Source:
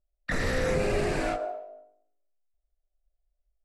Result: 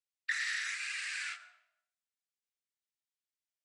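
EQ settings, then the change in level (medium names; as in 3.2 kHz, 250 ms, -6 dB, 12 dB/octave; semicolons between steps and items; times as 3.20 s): steep high-pass 1.6 kHz 36 dB/octave; steep low-pass 9.6 kHz 48 dB/octave; 0.0 dB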